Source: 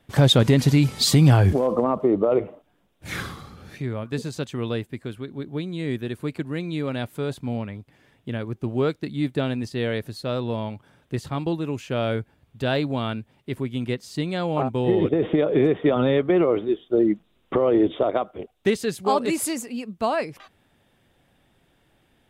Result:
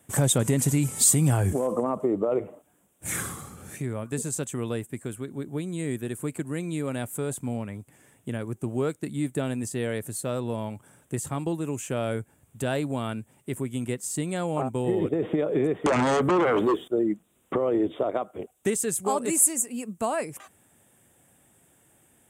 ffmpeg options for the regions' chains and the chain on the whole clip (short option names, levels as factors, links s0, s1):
-filter_complex "[0:a]asettb=1/sr,asplit=3[s0][s1][s2];[s0]atrim=end=15.864[s3];[s1]atrim=start=15.86:end=16.88,asetpts=PTS-STARTPTS,afade=t=in:d=0.004:c=qsin,afade=t=out:st=1.016:d=0.004:c=qsin,acompressor=threshold=0.112:ratio=6:attack=3.2:release=140:knee=1:detection=peak,aeval=exprs='0.251*sin(PI/2*3.55*val(0)/0.251)':c=same[s4];[s2]atrim=start=16.876[s5];[s3][s4]acrossfade=d=0.004:c1=hsin:c2=qsin[s6];[s6][s5]acrossfade=d=0.004:c1=qsin:c2=hsin,highpass=78,highshelf=f=6000:t=q:w=3:g=11.5,acompressor=threshold=0.0316:ratio=1.5"